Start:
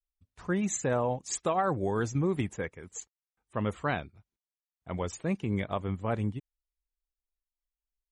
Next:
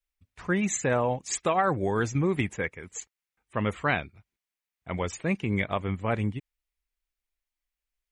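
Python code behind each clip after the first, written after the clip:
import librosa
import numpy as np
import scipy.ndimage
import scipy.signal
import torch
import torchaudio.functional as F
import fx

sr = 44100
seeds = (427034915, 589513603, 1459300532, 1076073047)

y = fx.peak_eq(x, sr, hz=2200.0, db=8.0, octaves=0.95)
y = y * librosa.db_to_amplitude(2.5)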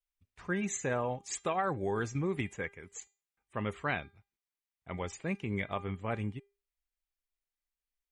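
y = fx.comb_fb(x, sr, f0_hz=400.0, decay_s=0.32, harmonics='all', damping=0.0, mix_pct=60)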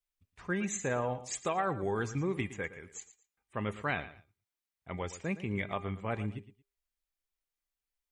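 y = fx.echo_feedback(x, sr, ms=114, feedback_pct=23, wet_db=-14.5)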